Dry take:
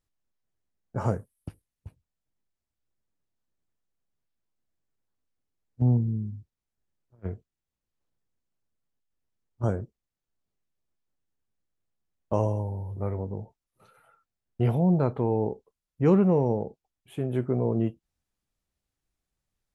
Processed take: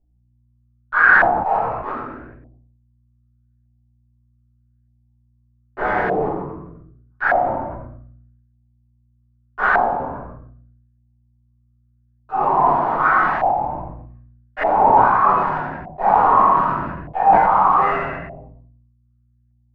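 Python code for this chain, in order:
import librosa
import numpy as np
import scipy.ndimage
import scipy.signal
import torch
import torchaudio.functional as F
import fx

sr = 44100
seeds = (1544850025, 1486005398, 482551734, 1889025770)

p1 = fx.spec_dilate(x, sr, span_ms=60)
p2 = scipy.signal.sosfilt(scipy.signal.cheby1(5, 1.0, 2600.0, 'lowpass', fs=sr, output='sos'), p1)
p3 = fx.spec_gate(p2, sr, threshold_db=-25, keep='weak')
p4 = fx.highpass(p3, sr, hz=140.0, slope=6)
p5 = fx.leveller(p4, sr, passes=5)
p6 = fx.fuzz(p5, sr, gain_db=46.0, gate_db=-48.0)
p7 = p5 + F.gain(torch.from_numpy(p6), -4.0).numpy()
p8 = fx.add_hum(p7, sr, base_hz=60, snr_db=34)
p9 = p8 + 10.0 ** (-12.0 / 20.0) * np.pad(p8, (int(92 * sr / 1000.0), 0))[:len(p8)]
p10 = fx.room_shoebox(p9, sr, seeds[0], volume_m3=120.0, walls='mixed', distance_m=3.3)
p11 = fx.filter_lfo_lowpass(p10, sr, shape='saw_up', hz=0.82, low_hz=710.0, high_hz=1700.0, q=5.2)
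p12 = fx.sustainer(p11, sr, db_per_s=40.0)
y = F.gain(torch.from_numpy(p12), -17.5).numpy()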